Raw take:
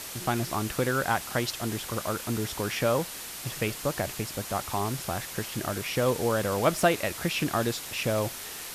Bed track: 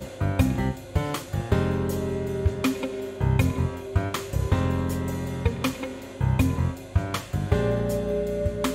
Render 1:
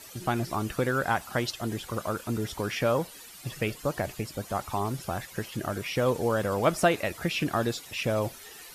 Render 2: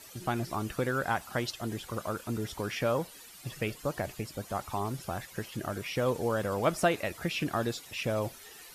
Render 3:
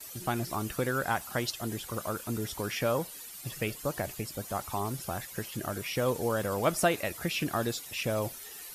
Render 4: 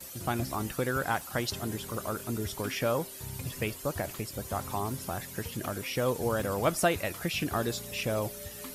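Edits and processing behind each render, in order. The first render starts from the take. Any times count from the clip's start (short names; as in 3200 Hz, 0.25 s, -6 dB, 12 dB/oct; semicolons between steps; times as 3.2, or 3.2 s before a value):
denoiser 13 dB, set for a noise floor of -40 dBFS
gain -3.5 dB
gate with hold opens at -45 dBFS; high shelf 7500 Hz +10.5 dB
add bed track -19.5 dB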